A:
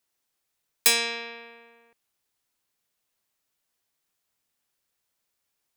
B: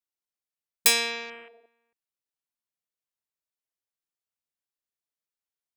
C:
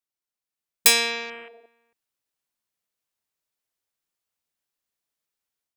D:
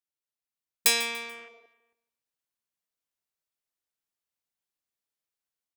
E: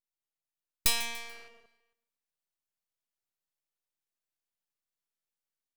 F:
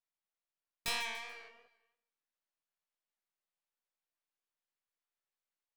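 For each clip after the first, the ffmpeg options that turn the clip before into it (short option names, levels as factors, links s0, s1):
-af "afwtdn=0.00708"
-af "dynaudnorm=f=330:g=3:m=2.24"
-af "aecho=1:1:145|290|435:0.178|0.0622|0.0218,volume=0.501"
-filter_complex "[0:a]acrossover=split=560[s0][s1];[s0]acompressor=threshold=0.00355:ratio=6[s2];[s2][s1]amix=inputs=2:normalize=0,aeval=exprs='max(val(0),0)':c=same"
-filter_complex "[0:a]flanger=delay=15:depth=5.5:speed=2.9,asplit=2[s0][s1];[s1]highpass=f=720:p=1,volume=5.62,asoftclip=type=tanh:threshold=0.224[s2];[s0][s2]amix=inputs=2:normalize=0,lowpass=f=1900:p=1,volume=0.501,volume=0.596"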